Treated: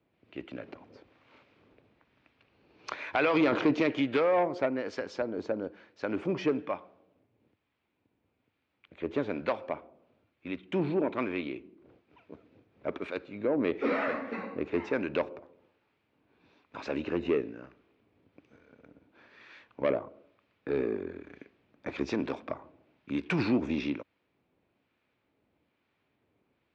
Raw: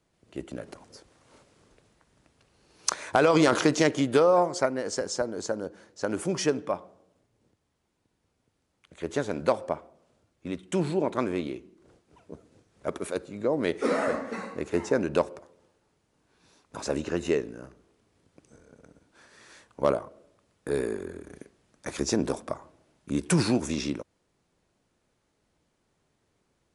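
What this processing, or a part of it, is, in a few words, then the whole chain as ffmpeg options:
guitar amplifier with harmonic tremolo: -filter_complex "[0:a]acrossover=split=940[link_01][link_02];[link_01]aeval=exprs='val(0)*(1-0.5/2+0.5/2*cos(2*PI*1.1*n/s))':channel_layout=same[link_03];[link_02]aeval=exprs='val(0)*(1-0.5/2-0.5/2*cos(2*PI*1.1*n/s))':channel_layout=same[link_04];[link_03][link_04]amix=inputs=2:normalize=0,asoftclip=type=tanh:threshold=-19.5dB,highpass=80,equalizer=frequency=160:width_type=q:width=4:gain=-4,equalizer=frequency=280:width_type=q:width=4:gain=4,equalizer=frequency=2400:width_type=q:width=4:gain=7,lowpass=frequency=3700:width=0.5412,lowpass=frequency=3700:width=1.3066"

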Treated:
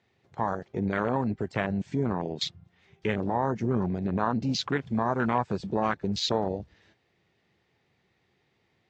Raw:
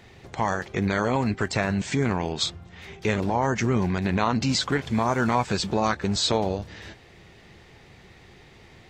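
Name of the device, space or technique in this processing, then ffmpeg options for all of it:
over-cleaned archive recording: -af "highpass=100,lowpass=6600,afwtdn=0.0447,volume=-3dB"

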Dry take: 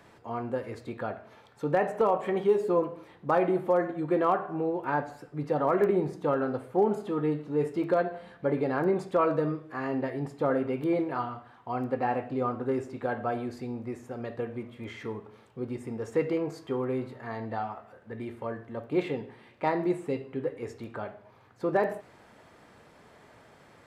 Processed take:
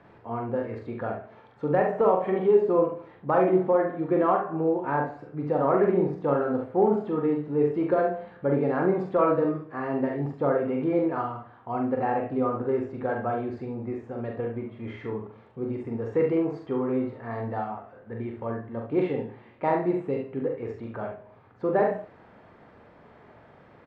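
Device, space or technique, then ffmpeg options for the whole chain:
phone in a pocket: -af "lowpass=3400,highshelf=frequency=2300:gain=-9.5,aecho=1:1:43|70:0.631|0.422,volume=2dB"

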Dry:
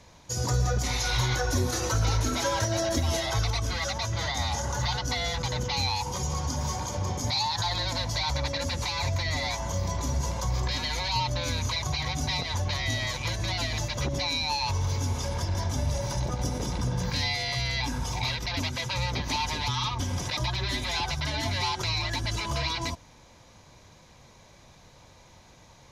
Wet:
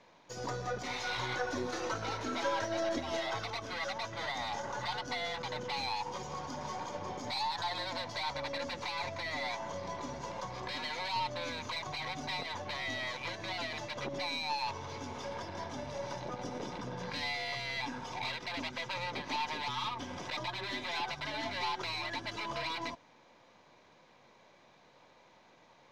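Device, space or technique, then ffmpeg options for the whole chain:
crystal radio: -af "highpass=260,lowpass=3300,aeval=exprs='if(lt(val(0),0),0.708*val(0),val(0))':channel_layout=same,volume=-3dB"

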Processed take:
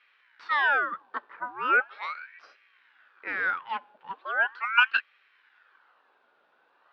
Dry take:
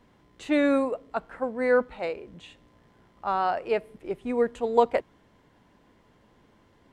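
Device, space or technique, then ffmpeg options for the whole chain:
voice changer toy: -filter_complex "[0:a]asettb=1/sr,asplit=3[link_01][link_02][link_03];[link_01]atrim=end=3.454[link_04];[link_02]atrim=start=3.45:end=4.72,asetpts=PTS-STARTPTS,afade=type=in:duration=0.004:curve=qsin,afade=type=out:start_time=1.266:duration=0.004:curve=qsin,lowpass=5200[link_05];[link_03]atrim=start=4.716[link_06];[link_04][link_05]acrossfade=duration=0.004:curve1=hsin:curve2=qsin[link_07];[link_07][link_06]acrossfade=duration=0.004:curve1=qsin:curve2=hsin,aeval=exprs='val(0)*sin(2*PI*1300*n/s+1300*0.7/0.39*sin(2*PI*0.39*n/s))':channel_layout=same,highpass=600,equalizer=frequency=670:width_type=q:width=4:gain=-6,equalizer=frequency=1500:width_type=q:width=4:gain=7,equalizer=frequency=2100:width_type=q:width=4:gain=-5,lowpass=frequency=4000:width=0.5412,lowpass=frequency=4000:width=1.3066"

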